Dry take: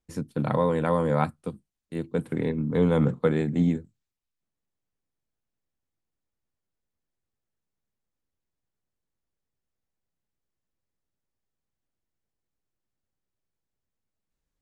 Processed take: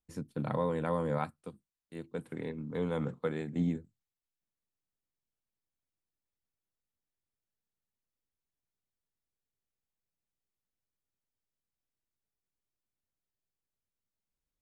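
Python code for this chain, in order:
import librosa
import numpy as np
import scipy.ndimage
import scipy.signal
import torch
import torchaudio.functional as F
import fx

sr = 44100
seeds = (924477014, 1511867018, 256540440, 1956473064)

y = fx.low_shelf(x, sr, hz=390.0, db=-6.0, at=(1.18, 3.56))
y = y * 10.0 ** (-8.0 / 20.0)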